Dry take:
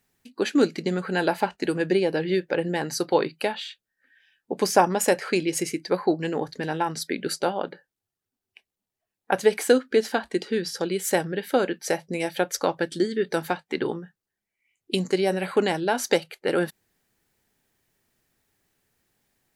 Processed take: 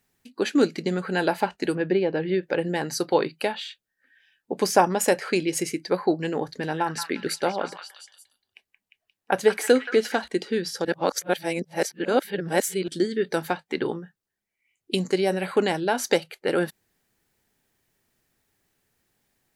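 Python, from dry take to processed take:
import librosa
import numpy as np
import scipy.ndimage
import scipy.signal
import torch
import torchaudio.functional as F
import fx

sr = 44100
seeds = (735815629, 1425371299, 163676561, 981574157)

y = fx.air_absorb(x, sr, metres=240.0, at=(1.75, 2.43))
y = fx.echo_stepped(y, sr, ms=176, hz=1500.0, octaves=0.7, feedback_pct=70, wet_db=-4.0, at=(6.45, 10.28))
y = fx.edit(y, sr, fx.reverse_span(start_s=10.85, length_s=2.03), tone=tone)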